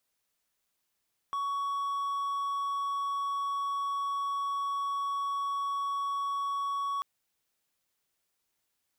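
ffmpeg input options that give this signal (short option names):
-f lavfi -i "aevalsrc='0.0422*(1-4*abs(mod(1120*t+0.25,1)-0.5))':d=5.69:s=44100"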